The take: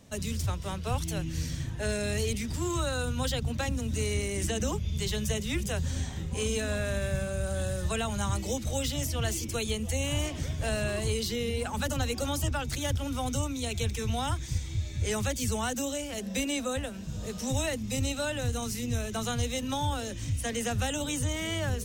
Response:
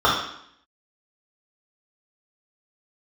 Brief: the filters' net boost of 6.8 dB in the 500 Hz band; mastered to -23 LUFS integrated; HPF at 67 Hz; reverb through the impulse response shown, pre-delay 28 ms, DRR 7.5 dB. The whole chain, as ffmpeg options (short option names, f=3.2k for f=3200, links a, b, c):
-filter_complex "[0:a]highpass=67,equalizer=f=500:t=o:g=8,asplit=2[a][b];[1:a]atrim=start_sample=2205,adelay=28[c];[b][c]afir=irnorm=-1:irlink=0,volume=-30dB[d];[a][d]amix=inputs=2:normalize=0,volume=5.5dB"